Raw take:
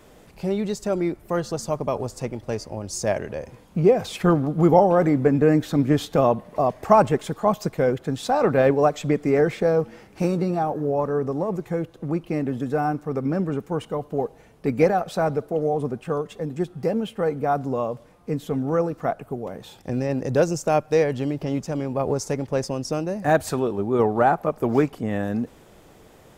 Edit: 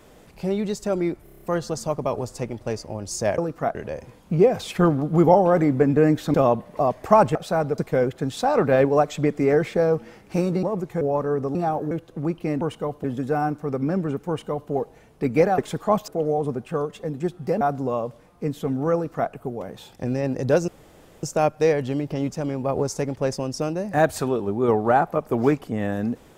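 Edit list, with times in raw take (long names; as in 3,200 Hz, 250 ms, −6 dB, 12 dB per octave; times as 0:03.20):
0:01.24: stutter 0.03 s, 7 plays
0:05.79–0:06.13: remove
0:07.14–0:07.64: swap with 0:15.01–0:15.44
0:10.49–0:10.85: swap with 0:11.39–0:11.77
0:13.71–0:14.14: duplicate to 0:12.47
0:16.97–0:17.47: remove
0:18.80–0:19.17: duplicate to 0:03.20
0:20.54: splice in room tone 0.55 s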